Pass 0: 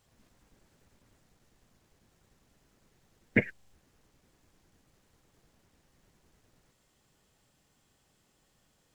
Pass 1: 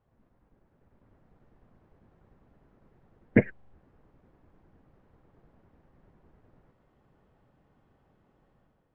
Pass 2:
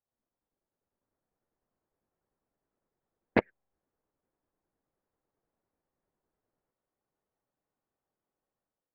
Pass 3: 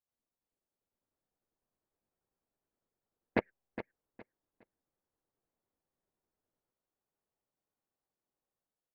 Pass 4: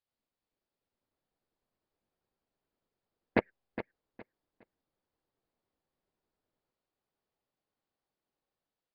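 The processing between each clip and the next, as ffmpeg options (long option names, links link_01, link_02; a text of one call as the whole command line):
ffmpeg -i in.wav -af "lowpass=1200,dynaudnorm=framelen=710:gausssize=3:maxgain=8dB,volume=-1dB" out.wav
ffmpeg -i in.wav -af "aeval=exprs='0.531*(cos(1*acos(clip(val(0)/0.531,-1,1)))-cos(1*PI/2))+0.119*(cos(3*acos(clip(val(0)/0.531,-1,1)))-cos(3*PI/2))+0.0188*(cos(7*acos(clip(val(0)/0.531,-1,1)))-cos(7*PI/2))':channel_layout=same,bass=frequency=250:gain=-11,treble=frequency=4000:gain=-9,volume=2dB" out.wav
ffmpeg -i in.wav -af "aecho=1:1:413|826|1239:0.266|0.0639|0.0153,volume=-5.5dB" out.wav
ffmpeg -i in.wav -af "aresample=11025,aresample=44100,volume=3dB" out.wav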